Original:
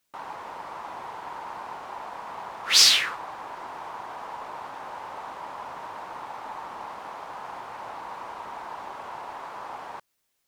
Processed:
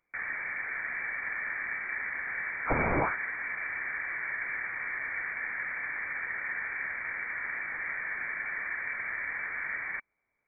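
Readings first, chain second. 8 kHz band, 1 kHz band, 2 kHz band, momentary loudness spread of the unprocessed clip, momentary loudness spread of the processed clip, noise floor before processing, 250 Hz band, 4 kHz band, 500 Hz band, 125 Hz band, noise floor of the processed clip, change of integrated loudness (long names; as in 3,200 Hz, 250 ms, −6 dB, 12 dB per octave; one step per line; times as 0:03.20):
below −40 dB, −6.0 dB, +7.0 dB, 16 LU, 3 LU, −76 dBFS, +7.0 dB, below −40 dB, +0.5 dB, +11.5 dB, −80 dBFS, −4.5 dB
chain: high-pass with resonance 400 Hz, resonance Q 4.9
voice inversion scrambler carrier 2,700 Hz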